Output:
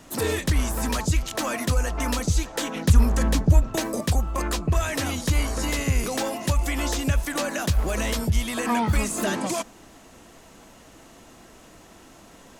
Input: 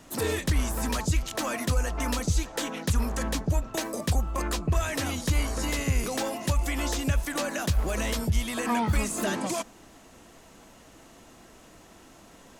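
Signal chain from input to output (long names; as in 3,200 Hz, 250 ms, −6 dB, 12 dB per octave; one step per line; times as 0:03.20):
0:02.75–0:04.01: low-shelf EQ 260 Hz +7.5 dB
level +3 dB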